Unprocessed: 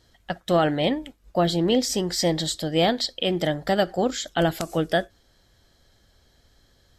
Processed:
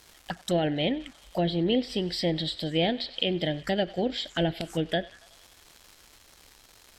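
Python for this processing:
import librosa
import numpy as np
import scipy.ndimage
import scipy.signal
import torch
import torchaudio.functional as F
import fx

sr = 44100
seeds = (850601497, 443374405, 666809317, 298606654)

y = fx.high_shelf(x, sr, hz=3400.0, db=11.5)
y = fx.echo_thinned(y, sr, ms=93, feedback_pct=74, hz=660.0, wet_db=-20)
y = fx.env_phaser(y, sr, low_hz=170.0, high_hz=1200.0, full_db=-21.0)
y = fx.dmg_crackle(y, sr, seeds[0], per_s=520.0, level_db=-37.0)
y = fx.env_lowpass_down(y, sr, base_hz=2500.0, full_db=-19.0)
y = y * 10.0 ** (-3.0 / 20.0)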